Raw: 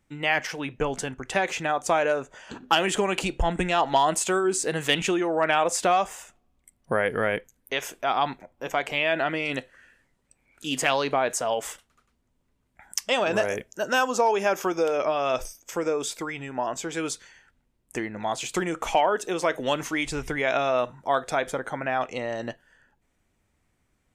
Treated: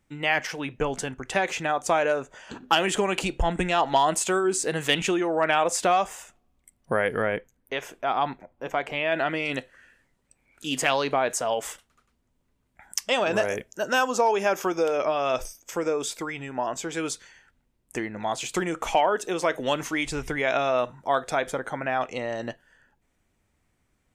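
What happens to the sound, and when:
7.22–9.12 high shelf 3400 Hz -10.5 dB

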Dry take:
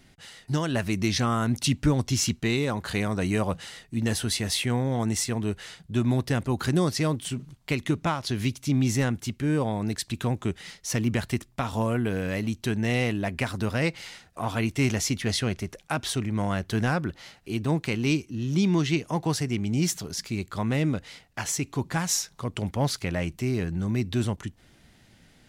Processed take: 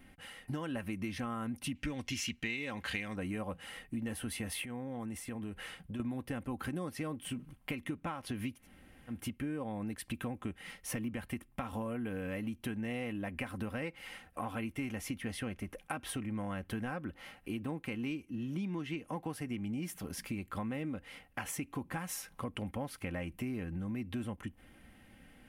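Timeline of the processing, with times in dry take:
1.75–3.16 band shelf 3600 Hz +12 dB 2.3 oct
4.64–6 compressor, threshold -35 dBFS
8.6–9.15 room tone, crossfade 0.16 s
whole clip: band shelf 5300 Hz -12.5 dB 1.3 oct; comb 3.8 ms, depth 48%; compressor 6:1, threshold -34 dBFS; gain -2 dB

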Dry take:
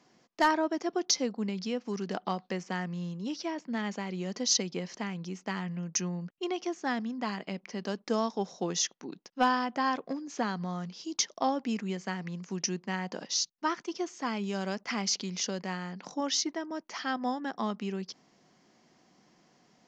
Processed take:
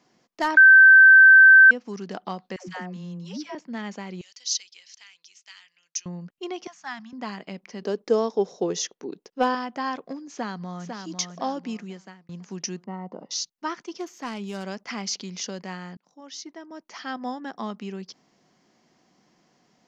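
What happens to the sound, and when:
0.57–1.71 bleep 1550 Hz -7.5 dBFS
2.56–3.55 dispersion lows, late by 0.123 s, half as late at 520 Hz
4.21–6.06 Butterworth band-pass 5300 Hz, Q 0.78
6.67–7.13 Chebyshev band-stop 160–940 Hz
7.82–9.55 bell 430 Hz +12.5 dB 0.75 oct
10.29–11.08 echo throw 0.5 s, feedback 35%, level -5.5 dB
11.67–12.29 fade out
12.84–13.31 polynomial smoothing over 65 samples
13.99–14.64 self-modulated delay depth 0.1 ms
15.97–17.17 fade in

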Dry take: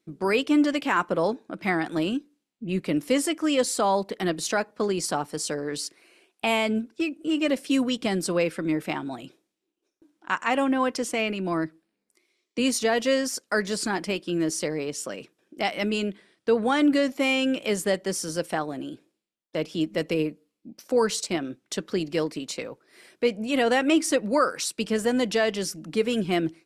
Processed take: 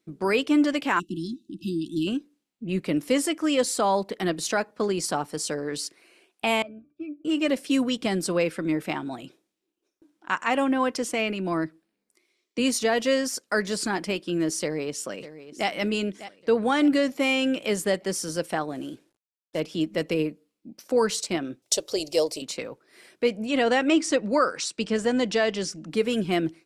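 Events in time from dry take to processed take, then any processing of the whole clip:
0.99–2.07 spectral delete 380–2600 Hz
6.62–7.25 octave resonator D, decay 0.13 s
14.61–15.68 echo throw 0.6 s, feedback 45%, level -14.5 dB
18.75–19.6 CVSD 64 kbps
21.62–22.42 EQ curve 120 Hz 0 dB, 180 Hz -17 dB, 600 Hz +9 dB, 1600 Hz -12 dB, 2500 Hz -1 dB, 5400 Hz +12 dB
23.47–25.91 LPF 8200 Hz 24 dB/oct

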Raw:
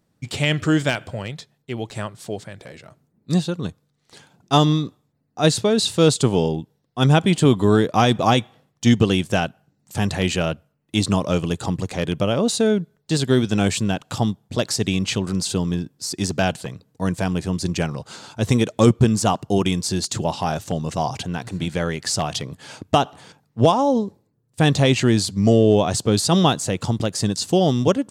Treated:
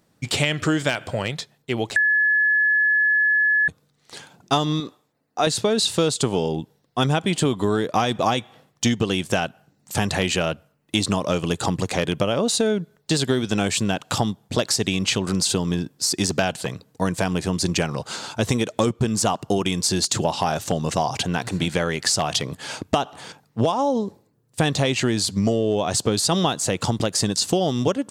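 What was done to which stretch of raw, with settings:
1.96–3.68 bleep 1710 Hz -15.5 dBFS
4.8–5.47 tone controls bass -11 dB, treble -2 dB
whole clip: low shelf 260 Hz -7 dB; compressor, threshold -25 dBFS; gain +7.5 dB

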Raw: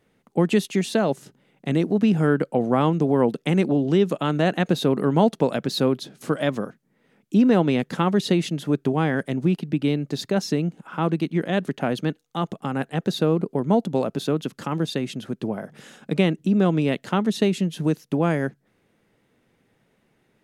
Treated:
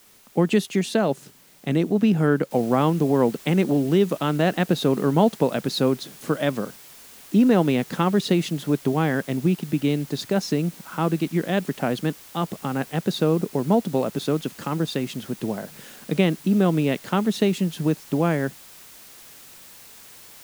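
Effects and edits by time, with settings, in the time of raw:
2.51 noise floor step -54 dB -46 dB

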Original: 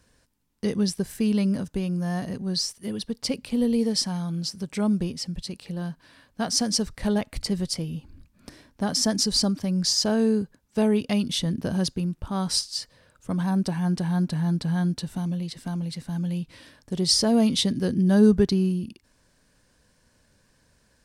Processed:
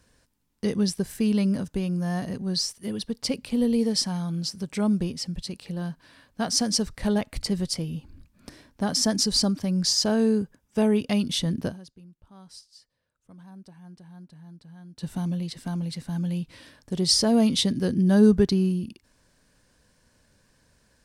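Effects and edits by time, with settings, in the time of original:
10.38–11.07 notch 4200 Hz, Q 6.5
11.68–15.04 dip -22 dB, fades 0.35 s exponential

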